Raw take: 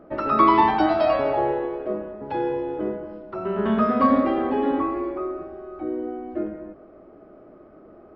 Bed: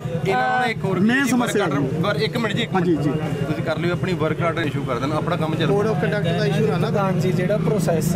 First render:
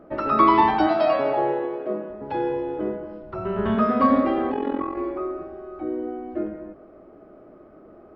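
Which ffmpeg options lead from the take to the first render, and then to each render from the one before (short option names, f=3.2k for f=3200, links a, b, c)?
-filter_complex "[0:a]asettb=1/sr,asplit=3[a][b][c];[a]atrim=end=0.874[d];[b]atrim=start=0.87:end=2.1,asetpts=PTS-STARTPTS,afade=t=in:d=0.004:c=qsin,afade=t=out:st=1.226:d=0.004:c=qsin,highpass=f=130:w=0.5412,highpass=f=130:w=1.3066[e];[c]atrim=start=2.096[f];[d][e]acrossfade=d=0.004:c1=hsin:c2=qsin[g];[g][f]acrossfade=d=0.004:c1=qsin:c2=hsin,asettb=1/sr,asplit=3[h][i][j];[h]atrim=end=3.224[k];[i]atrim=start=3.22:end=3.75,asetpts=PTS-STARTPTS,afade=t=in:d=0.004:c=qsin,afade=t=out:st=0.526:d=0.004:c=qsin,lowshelf=f=160:t=q:w=1.5:g=8.5[l];[j]atrim=start=3.746[m];[k][l]acrossfade=d=0.004:c1=hsin:c2=qsin[n];[n][m]acrossfade=d=0.004:c1=qsin:c2=hsin,asplit=3[o][p][q];[o]afade=t=out:st=4.51:d=0.02[r];[p]tremolo=f=43:d=0.824,afade=t=in:st=4.51:d=0.02,afade=t=out:st=4.96:d=0.02[s];[q]afade=t=in:st=4.96:d=0.02[t];[r][s][t]amix=inputs=3:normalize=0"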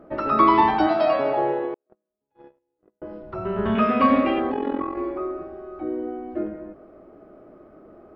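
-filter_complex "[0:a]asettb=1/sr,asplit=3[a][b][c];[a]atrim=end=1.744[d];[b]atrim=start=1.74:end=3.02,asetpts=PTS-STARTPTS,afade=t=in:d=0.004:c=qsin,afade=t=out:st=1.276:d=0.004:c=qsin,agate=range=-50dB:threshold=-21dB:ratio=16:release=100:detection=peak[e];[c]atrim=start=3.016[f];[d][e]acrossfade=d=0.004:c1=hsin:c2=qsin[g];[g][f]acrossfade=d=0.004:c1=qsin:c2=hsin,asettb=1/sr,asplit=3[h][i][j];[h]atrim=end=3.754[k];[i]atrim=start=3.75:end=4.4,asetpts=PTS-STARTPTS,afade=t=in:d=0.004:c=qsin,afade=t=out:st=0.646:d=0.004:c=qsin,equalizer=f=2.6k:w=2.7:g=15[l];[j]atrim=start=4.396[m];[k][l]acrossfade=d=0.004:c1=hsin:c2=qsin[n];[n][m]acrossfade=d=0.004:c1=qsin:c2=hsin"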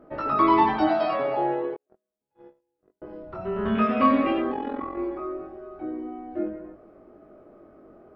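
-af "flanger=delay=20:depth=3.2:speed=0.41"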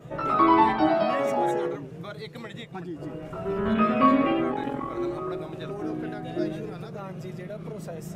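-filter_complex "[1:a]volume=-17.5dB[a];[0:a][a]amix=inputs=2:normalize=0"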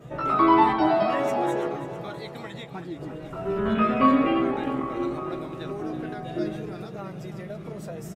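-filter_complex "[0:a]asplit=2[a][b];[b]adelay=15,volume=-11dB[c];[a][c]amix=inputs=2:normalize=0,aecho=1:1:329|658|987|1316|1645|1974:0.224|0.132|0.0779|0.046|0.0271|0.016"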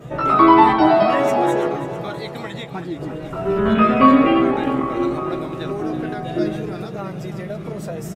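-af "volume=7.5dB,alimiter=limit=-1dB:level=0:latency=1"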